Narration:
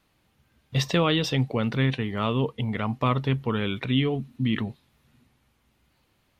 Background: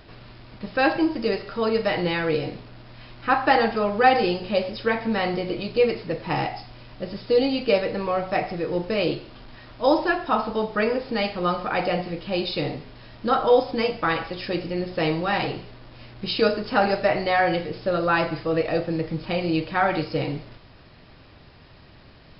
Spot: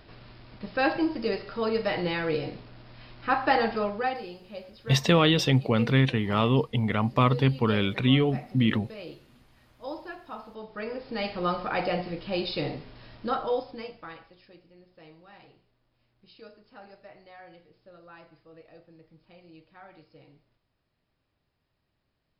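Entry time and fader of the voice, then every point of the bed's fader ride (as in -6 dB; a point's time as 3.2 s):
4.15 s, +2.0 dB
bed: 3.83 s -4.5 dB
4.26 s -18 dB
10.52 s -18 dB
11.36 s -4 dB
13.12 s -4 dB
14.63 s -28.5 dB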